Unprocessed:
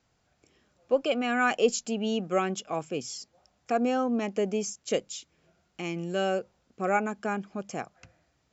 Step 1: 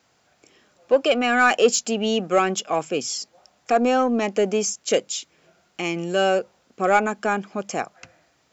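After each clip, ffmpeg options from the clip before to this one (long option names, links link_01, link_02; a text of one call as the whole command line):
ffmpeg -i in.wav -filter_complex "[0:a]highpass=frequency=340:poles=1,asplit=2[link_01][link_02];[link_02]asoftclip=type=tanh:threshold=-25.5dB,volume=-3dB[link_03];[link_01][link_03]amix=inputs=2:normalize=0,volume=6dB" out.wav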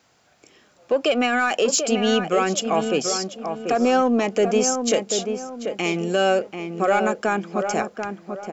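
ffmpeg -i in.wav -filter_complex "[0:a]alimiter=limit=-13.5dB:level=0:latency=1:release=75,asplit=2[link_01][link_02];[link_02]adelay=738,lowpass=frequency=1600:poles=1,volume=-6dB,asplit=2[link_03][link_04];[link_04]adelay=738,lowpass=frequency=1600:poles=1,volume=0.37,asplit=2[link_05][link_06];[link_06]adelay=738,lowpass=frequency=1600:poles=1,volume=0.37,asplit=2[link_07][link_08];[link_08]adelay=738,lowpass=frequency=1600:poles=1,volume=0.37[link_09];[link_01][link_03][link_05][link_07][link_09]amix=inputs=5:normalize=0,volume=2.5dB" out.wav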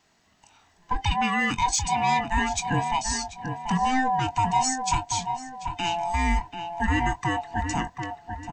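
ffmpeg -i in.wav -filter_complex "[0:a]afftfilt=real='real(if(lt(b,1008),b+24*(1-2*mod(floor(b/24),2)),b),0)':imag='imag(if(lt(b,1008),b+24*(1-2*mod(floor(b/24),2)),b),0)':win_size=2048:overlap=0.75,asplit=2[link_01][link_02];[link_02]adelay=22,volume=-12.5dB[link_03];[link_01][link_03]amix=inputs=2:normalize=0,volume=-4dB" out.wav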